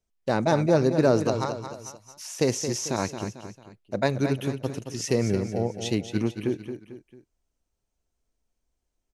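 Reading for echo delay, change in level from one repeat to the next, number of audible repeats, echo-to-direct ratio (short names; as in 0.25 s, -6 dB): 0.223 s, -7.5 dB, 3, -8.0 dB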